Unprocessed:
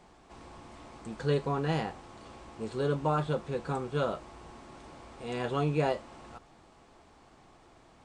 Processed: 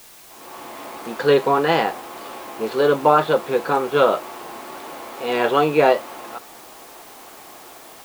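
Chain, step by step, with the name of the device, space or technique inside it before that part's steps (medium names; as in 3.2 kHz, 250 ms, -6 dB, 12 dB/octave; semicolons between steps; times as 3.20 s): dictaphone (band-pass 370–4200 Hz; level rider gain up to 14.5 dB; wow and flutter; white noise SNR 24 dB); trim +2 dB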